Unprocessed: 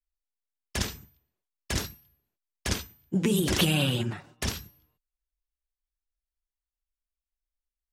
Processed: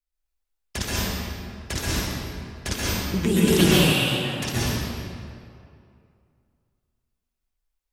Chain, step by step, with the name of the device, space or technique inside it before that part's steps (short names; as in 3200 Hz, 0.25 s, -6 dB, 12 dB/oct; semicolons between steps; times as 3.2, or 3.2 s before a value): stairwell (reverb RT60 2.4 s, pre-delay 0.116 s, DRR -7.5 dB); 3.92–4.54 low shelf 440 Hz -9.5 dB